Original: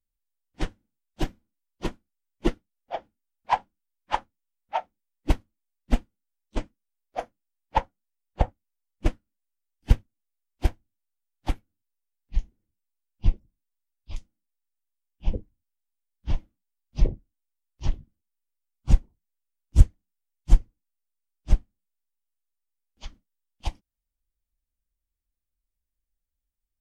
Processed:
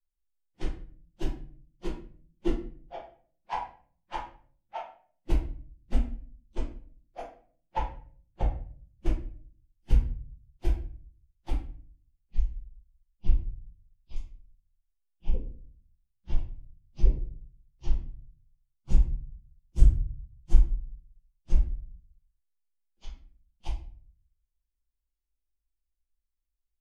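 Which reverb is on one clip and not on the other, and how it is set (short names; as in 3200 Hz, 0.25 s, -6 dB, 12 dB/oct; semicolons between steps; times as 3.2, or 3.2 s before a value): shoebox room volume 42 m³, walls mixed, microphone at 1 m; gain -13.5 dB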